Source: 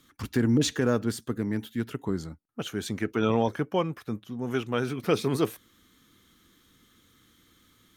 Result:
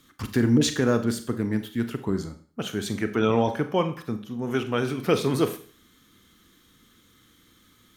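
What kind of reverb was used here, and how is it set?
Schroeder reverb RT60 0.44 s, combs from 30 ms, DRR 9 dB; trim +2.5 dB

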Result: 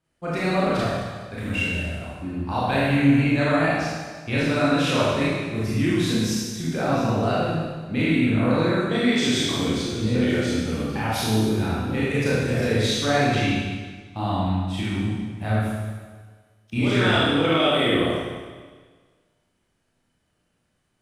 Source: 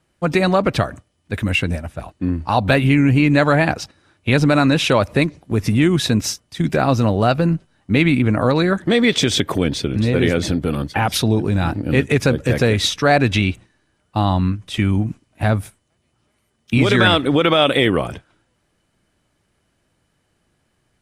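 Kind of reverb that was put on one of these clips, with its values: Schroeder reverb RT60 1.5 s, combs from 25 ms, DRR -8.5 dB; trim -14 dB

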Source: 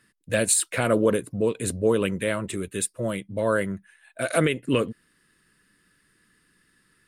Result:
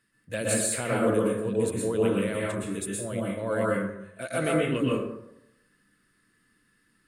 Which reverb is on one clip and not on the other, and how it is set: plate-style reverb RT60 0.84 s, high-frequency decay 0.5×, pre-delay 105 ms, DRR -4.5 dB; trim -9 dB

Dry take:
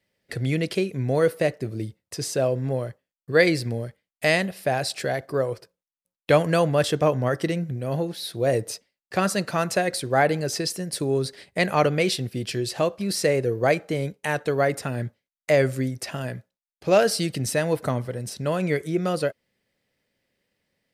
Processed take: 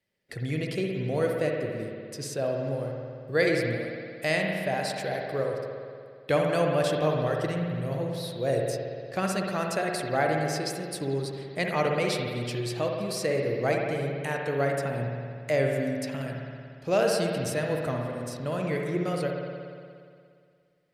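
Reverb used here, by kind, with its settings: spring tank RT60 2.2 s, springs 58 ms, chirp 30 ms, DRR 0.5 dB; trim -7 dB

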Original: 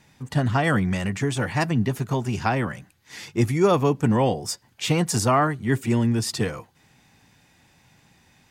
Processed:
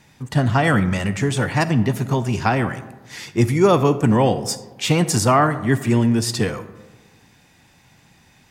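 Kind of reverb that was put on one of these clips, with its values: algorithmic reverb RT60 1.3 s, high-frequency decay 0.4×, pre-delay 5 ms, DRR 12.5 dB; trim +4 dB

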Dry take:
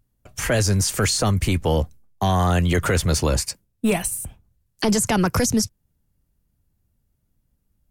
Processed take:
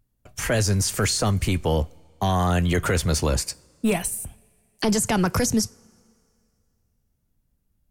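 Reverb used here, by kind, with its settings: two-slope reverb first 0.32 s, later 2.4 s, from -18 dB, DRR 19.5 dB; trim -2 dB

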